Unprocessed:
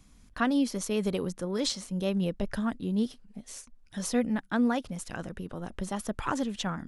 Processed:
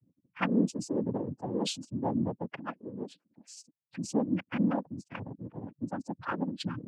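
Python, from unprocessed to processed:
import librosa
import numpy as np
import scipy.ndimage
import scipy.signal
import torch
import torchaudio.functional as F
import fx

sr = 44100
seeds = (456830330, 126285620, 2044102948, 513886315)

y = fx.highpass(x, sr, hz=400.0, slope=12, at=(2.57, 3.53), fade=0.02)
y = fx.spec_gate(y, sr, threshold_db=-10, keep='strong')
y = fx.peak_eq(y, sr, hz=1800.0, db=5.5, octaves=0.31)
y = fx.noise_vocoder(y, sr, seeds[0], bands=8)
y = y * librosa.db_to_amplitude(-1.0)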